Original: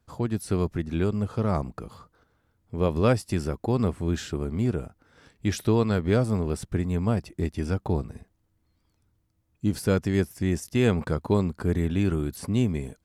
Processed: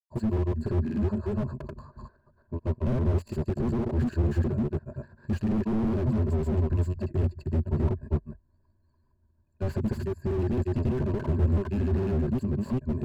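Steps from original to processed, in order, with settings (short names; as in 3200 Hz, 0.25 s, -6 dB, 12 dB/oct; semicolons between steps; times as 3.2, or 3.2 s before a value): Wiener smoothing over 15 samples; ripple EQ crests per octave 1.4, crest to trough 18 dB; grains, spray 0.289 s, pitch spread up and down by 0 st; slew limiter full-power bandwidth 15 Hz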